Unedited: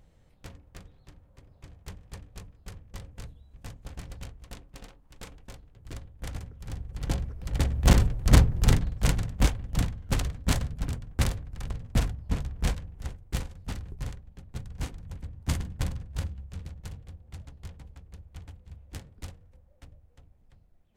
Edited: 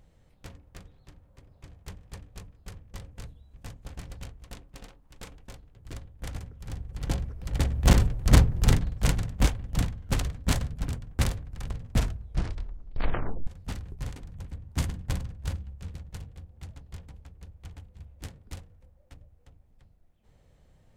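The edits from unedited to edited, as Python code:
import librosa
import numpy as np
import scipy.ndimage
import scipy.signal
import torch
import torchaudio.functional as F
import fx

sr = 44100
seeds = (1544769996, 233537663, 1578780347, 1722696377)

y = fx.edit(x, sr, fx.tape_stop(start_s=11.95, length_s=1.52),
    fx.cut(start_s=14.16, length_s=0.71), tone=tone)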